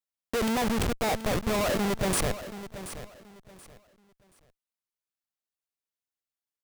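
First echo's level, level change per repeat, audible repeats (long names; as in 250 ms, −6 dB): −13.0 dB, −11.5 dB, 2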